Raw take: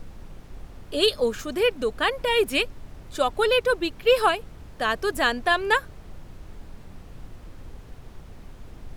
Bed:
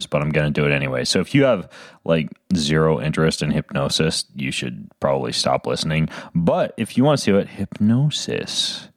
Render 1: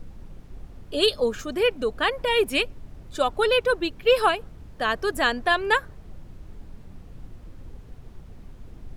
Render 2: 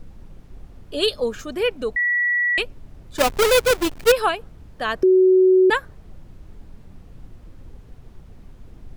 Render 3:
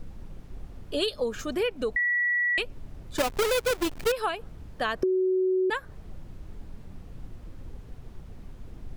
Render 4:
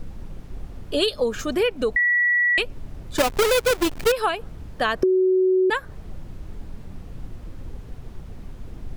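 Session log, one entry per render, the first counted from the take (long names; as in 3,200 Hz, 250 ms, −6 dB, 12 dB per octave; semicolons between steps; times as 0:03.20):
broadband denoise 6 dB, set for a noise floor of −45 dBFS
0:01.96–0:02.58: beep over 1,940 Hz −17 dBFS; 0:03.18–0:04.12: each half-wave held at its own peak; 0:05.03–0:05.70: beep over 373 Hz −10.5 dBFS
downward compressor 6 to 1, threshold −24 dBFS, peak gain reduction 12 dB
level +6 dB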